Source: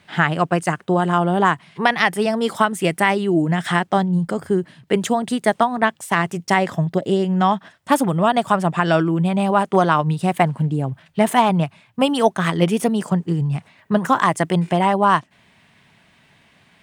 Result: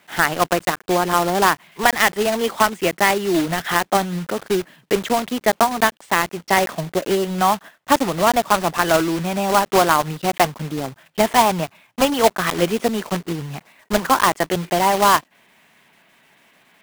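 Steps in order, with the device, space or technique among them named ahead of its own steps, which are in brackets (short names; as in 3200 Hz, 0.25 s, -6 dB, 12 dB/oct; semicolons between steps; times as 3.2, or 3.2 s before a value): early digital voice recorder (BPF 270–3600 Hz; block floating point 3-bit); gain +1 dB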